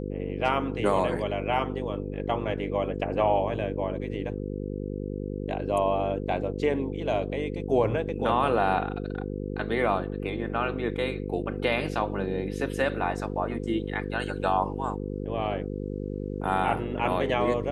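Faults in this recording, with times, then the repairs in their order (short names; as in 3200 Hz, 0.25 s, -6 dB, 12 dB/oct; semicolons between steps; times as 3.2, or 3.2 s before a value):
buzz 50 Hz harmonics 10 -33 dBFS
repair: de-hum 50 Hz, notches 10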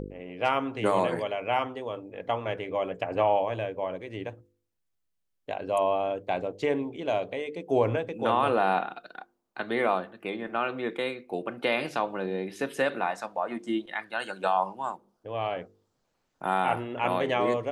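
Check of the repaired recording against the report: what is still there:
none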